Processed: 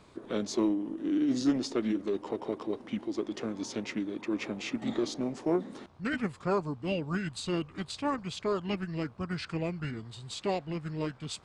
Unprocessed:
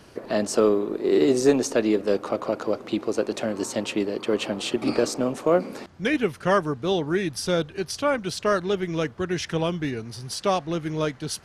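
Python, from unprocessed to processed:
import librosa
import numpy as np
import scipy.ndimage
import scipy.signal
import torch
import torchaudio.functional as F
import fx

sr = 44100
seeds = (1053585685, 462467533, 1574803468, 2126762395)

y = fx.dmg_buzz(x, sr, base_hz=60.0, harmonics=27, level_db=-58.0, tilt_db=0, odd_only=False)
y = fx.formant_shift(y, sr, semitones=-4)
y = y * 10.0 ** (-8.0 / 20.0)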